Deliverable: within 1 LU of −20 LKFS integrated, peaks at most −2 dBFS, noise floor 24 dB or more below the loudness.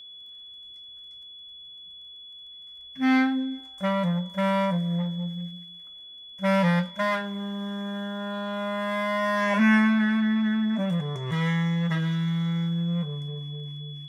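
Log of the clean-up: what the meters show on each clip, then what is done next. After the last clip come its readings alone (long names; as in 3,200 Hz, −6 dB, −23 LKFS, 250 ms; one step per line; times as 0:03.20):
crackle rate 25 per second; interfering tone 3,400 Hz; level of the tone −42 dBFS; integrated loudness −26.0 LKFS; sample peak −11.5 dBFS; target loudness −20.0 LKFS
→ click removal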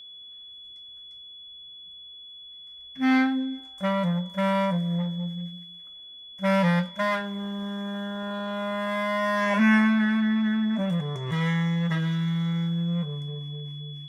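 crackle rate 0.071 per second; interfering tone 3,400 Hz; level of the tone −42 dBFS
→ notch filter 3,400 Hz, Q 30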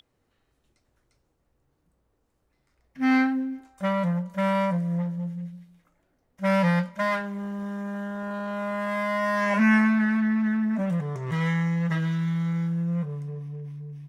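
interfering tone none found; integrated loudness −26.0 LKFS; sample peak −11.5 dBFS; target loudness −20.0 LKFS
→ level +6 dB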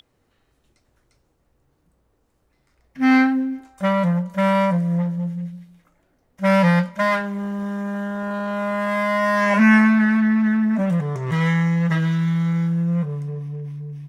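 integrated loudness −20.0 LKFS; sample peak −5.5 dBFS; background noise floor −67 dBFS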